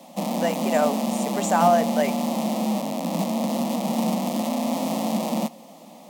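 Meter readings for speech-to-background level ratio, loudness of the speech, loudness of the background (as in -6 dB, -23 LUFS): 1.5 dB, -24.0 LUFS, -25.5 LUFS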